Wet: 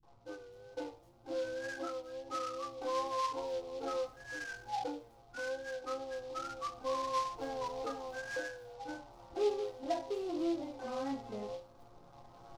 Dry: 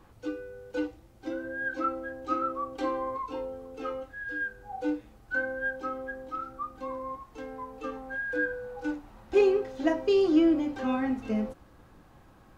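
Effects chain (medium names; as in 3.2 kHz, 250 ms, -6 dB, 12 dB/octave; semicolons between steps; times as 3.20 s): recorder AGC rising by 6.6 dB/s; peaking EQ 760 Hz +9.5 dB 1.2 oct; band-stop 1.7 kHz, Q 7.5; wow and flutter 44 cents; chord resonator A#2 minor, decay 0.33 s; in parallel at -5 dB: hard clipper -39.5 dBFS, distortion -6 dB; on the sum: peaking EQ 3.4 kHz -14 dB 1.3 oct; three bands offset in time lows, mids, highs 30/290 ms, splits 210/6000 Hz; delay time shaken by noise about 3.6 kHz, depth 0.032 ms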